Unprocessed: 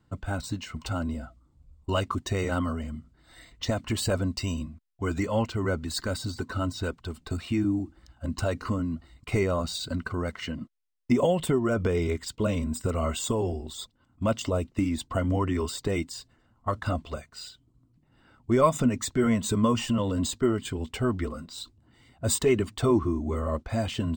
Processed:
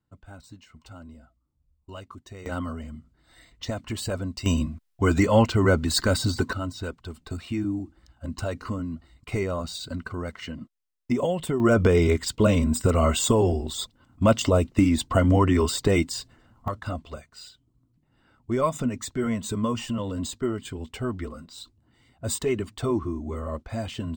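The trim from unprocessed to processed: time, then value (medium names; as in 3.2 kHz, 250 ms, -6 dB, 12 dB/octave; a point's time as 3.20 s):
-14 dB
from 2.46 s -3 dB
from 4.46 s +8 dB
from 6.53 s -2 dB
from 11.60 s +7 dB
from 16.68 s -3 dB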